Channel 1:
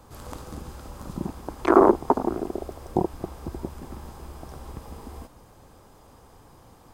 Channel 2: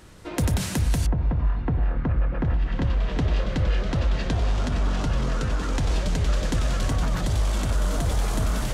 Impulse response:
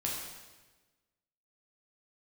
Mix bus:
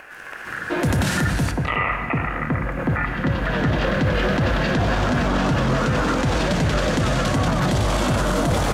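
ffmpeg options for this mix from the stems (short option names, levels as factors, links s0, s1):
-filter_complex "[0:a]equalizer=f=170:w=5.1:g=9,acompressor=mode=upward:threshold=0.0282:ratio=2.5,aeval=exprs='val(0)*sin(2*PI*1600*n/s)':c=same,volume=0.891,asplit=2[s0][s1];[s1]volume=0.376[s2];[1:a]highpass=130,bandreject=f=410:w=12,adelay=450,volume=1.26,asplit=2[s3][s4];[s4]volume=0.299[s5];[2:a]atrim=start_sample=2205[s6];[s2][s5]amix=inputs=2:normalize=0[s7];[s7][s6]afir=irnorm=-1:irlink=0[s8];[s0][s3][s8]amix=inputs=3:normalize=0,dynaudnorm=f=170:g=5:m=3.76,highshelf=f=3900:g=-8.5,alimiter=limit=0.251:level=0:latency=1:release=20"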